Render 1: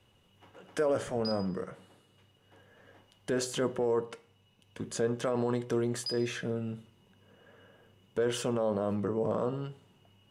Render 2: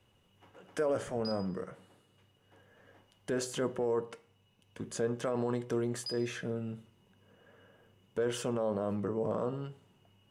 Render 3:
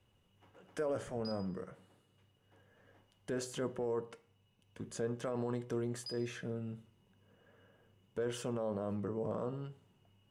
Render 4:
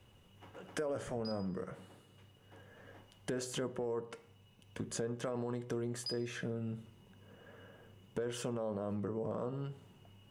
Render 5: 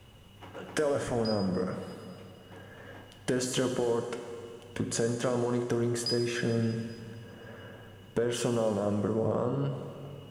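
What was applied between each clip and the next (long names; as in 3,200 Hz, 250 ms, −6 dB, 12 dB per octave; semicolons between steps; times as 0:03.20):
parametric band 3,800 Hz −2.5 dB; level −2.5 dB
low-shelf EQ 150 Hz +5 dB; level −5.5 dB
downward compressor 3 to 1, threshold −47 dBFS, peak gain reduction 11.5 dB; level +9 dB
dense smooth reverb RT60 2.7 s, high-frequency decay 0.9×, DRR 6.5 dB; level +8.5 dB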